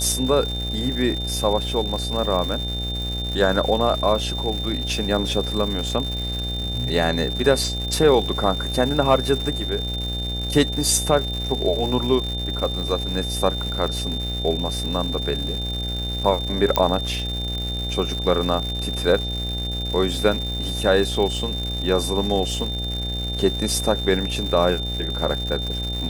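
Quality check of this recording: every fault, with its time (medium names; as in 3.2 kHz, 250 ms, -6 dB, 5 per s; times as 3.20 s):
buzz 60 Hz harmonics 14 -28 dBFS
crackle 290 per s -28 dBFS
whine 3.6 kHz -28 dBFS
16.76 s: pop -4 dBFS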